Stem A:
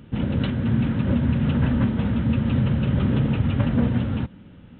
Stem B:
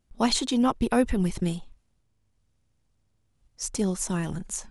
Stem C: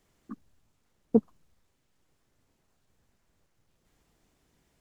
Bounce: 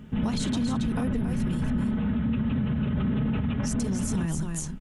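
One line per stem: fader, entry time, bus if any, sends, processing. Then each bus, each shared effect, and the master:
+1.0 dB, 0.00 s, bus A, no send, no echo send, high shelf 2700 Hz -8.5 dB; comb 4.7 ms, depth 58%
-0.5 dB, 0.05 s, no bus, no send, echo send -6.5 dB, low shelf 270 Hz +9 dB; compressor, threshold -21 dBFS, peak gain reduction 9 dB
+1.0 dB, 0.00 s, bus A, no send, no echo send, dry
bus A: 0.0 dB, limiter -16 dBFS, peak gain reduction 10 dB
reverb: off
echo: echo 0.276 s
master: bell 450 Hz -4.5 dB 1.6 oct; limiter -19.5 dBFS, peak gain reduction 7.5 dB

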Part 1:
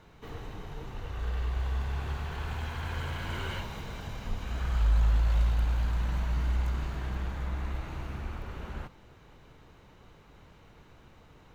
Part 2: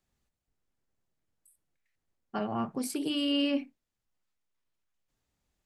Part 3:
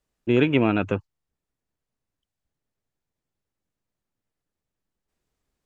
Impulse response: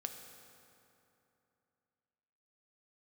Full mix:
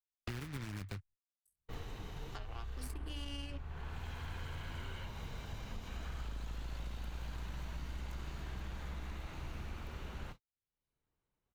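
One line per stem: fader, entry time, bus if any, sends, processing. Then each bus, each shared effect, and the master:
-11.5 dB, 1.45 s, bus A, no send, octaver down 2 oct, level -4 dB
-0.5 dB, 0.00 s, no bus, no send, Chebyshev high-pass 250 Hz, order 6; tilt +3 dB/oct; power-law curve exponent 2
-9.0 dB, 0.00 s, bus A, no send, noise-modulated delay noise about 1600 Hz, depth 0.38 ms
bus A: 0.0 dB, gate -53 dBFS, range -52 dB; compressor 2:1, threshold -41 dBFS, peak gain reduction 10 dB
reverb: off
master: three-band squash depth 100%

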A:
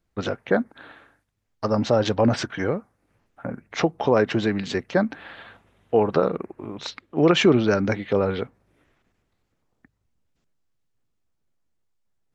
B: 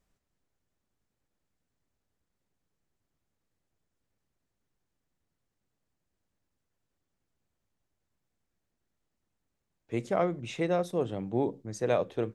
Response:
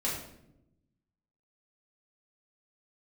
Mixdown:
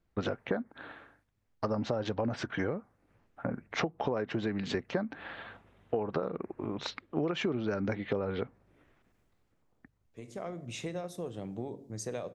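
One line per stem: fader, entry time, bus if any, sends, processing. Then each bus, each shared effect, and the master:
-1.0 dB, 0.00 s, no send, high shelf 4300 Hz -9.5 dB
-3.5 dB, 0.25 s, send -19.5 dB, tone controls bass +2 dB, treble +7 dB; compressor 10:1, threshold -31 dBFS, peak gain reduction 11 dB; auto duck -19 dB, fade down 0.60 s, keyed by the first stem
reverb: on, RT60 0.80 s, pre-delay 4 ms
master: compressor 12:1, threshold -28 dBFS, peak gain reduction 16 dB

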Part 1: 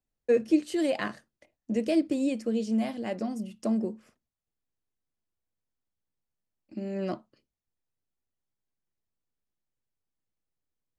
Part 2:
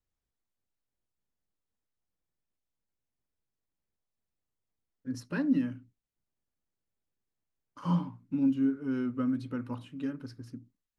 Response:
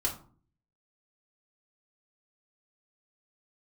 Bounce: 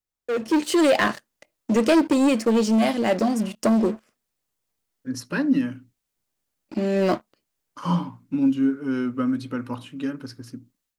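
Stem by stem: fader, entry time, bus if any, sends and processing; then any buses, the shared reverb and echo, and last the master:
-8.5 dB, 0.00 s, no send, sample leveller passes 3
-2.5 dB, 0.00 s, no send, high shelf 4700 Hz +5 dB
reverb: off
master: low shelf 230 Hz -7.5 dB; AGC gain up to 12 dB

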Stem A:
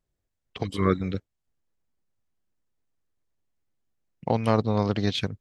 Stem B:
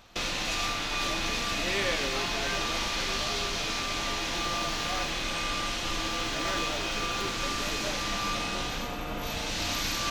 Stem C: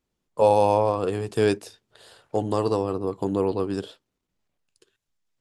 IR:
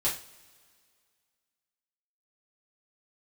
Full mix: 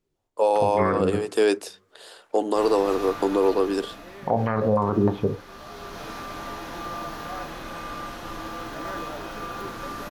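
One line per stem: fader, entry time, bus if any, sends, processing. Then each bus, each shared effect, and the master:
+2.0 dB, 0.00 s, send -14.5 dB, notches 60/120/180/240/300/360/420/480/540 Hz; stepped low-pass 6.5 Hz 360–1700 Hz
0.0 dB, 2.40 s, no send, band shelf 4200 Hz -12.5 dB 2.3 oct; auto duck -11 dB, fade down 0.95 s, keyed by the first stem
-2.5 dB, 0.00 s, no send, HPF 280 Hz 24 dB/oct; AGC gain up to 8.5 dB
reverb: on, pre-delay 3 ms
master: low shelf 68 Hz -7.5 dB; limiter -11 dBFS, peak gain reduction 10.5 dB

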